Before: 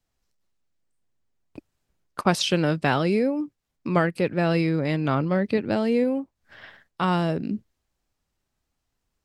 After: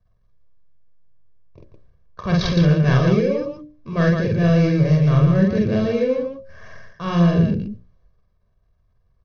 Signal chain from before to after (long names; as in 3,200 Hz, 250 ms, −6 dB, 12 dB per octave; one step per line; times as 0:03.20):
running median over 15 samples
comb filter 1.8 ms, depth 84%
transient designer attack −8 dB, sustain +7 dB
Chebyshev low-pass filter 6,300 Hz, order 8
low-shelf EQ 240 Hz +12 dB
mains-hum notches 60/120/180/240/300/360/420/480/540/600 Hz
loudspeakers that aren't time-aligned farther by 16 metres −1 dB, 56 metres −4 dB
dynamic equaliser 790 Hz, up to −6 dB, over −38 dBFS, Q 0.88